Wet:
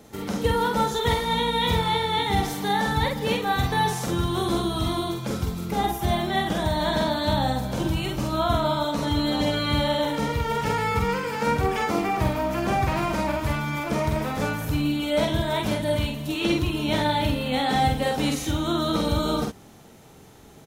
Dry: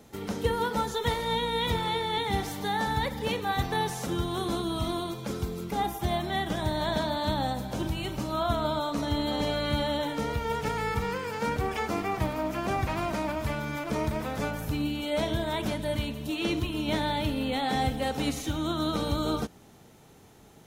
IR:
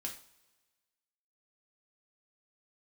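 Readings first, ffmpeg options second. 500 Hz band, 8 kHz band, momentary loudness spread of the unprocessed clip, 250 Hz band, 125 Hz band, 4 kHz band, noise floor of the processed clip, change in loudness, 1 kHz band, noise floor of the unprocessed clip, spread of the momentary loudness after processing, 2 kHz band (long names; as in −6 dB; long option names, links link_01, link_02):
+5.0 dB, +5.0 dB, 4 LU, +5.0 dB, +6.0 dB, +5.5 dB, −48 dBFS, +5.5 dB, +5.5 dB, −54 dBFS, 4 LU, +5.5 dB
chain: -filter_complex "[0:a]asplit=2[link_01][link_02];[link_02]adelay=47,volume=-3dB[link_03];[link_01][link_03]amix=inputs=2:normalize=0,volume=3.5dB"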